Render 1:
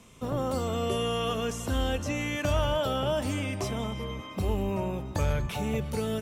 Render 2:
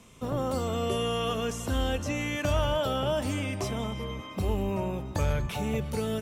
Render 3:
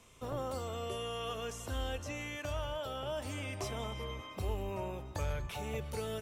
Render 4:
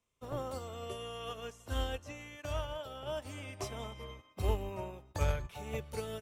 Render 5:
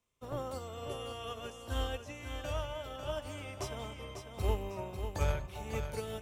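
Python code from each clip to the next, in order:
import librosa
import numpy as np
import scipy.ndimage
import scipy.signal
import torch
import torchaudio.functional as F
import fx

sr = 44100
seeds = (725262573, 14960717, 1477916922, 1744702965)

y1 = x
y2 = fx.peak_eq(y1, sr, hz=200.0, db=-9.5, octaves=1.1)
y2 = fx.rider(y2, sr, range_db=4, speed_s=0.5)
y2 = y2 * librosa.db_to_amplitude(-7.5)
y3 = fx.upward_expand(y2, sr, threshold_db=-52.0, expansion=2.5)
y3 = y3 * librosa.db_to_amplitude(7.0)
y4 = fx.echo_feedback(y3, sr, ms=546, feedback_pct=35, wet_db=-7.5)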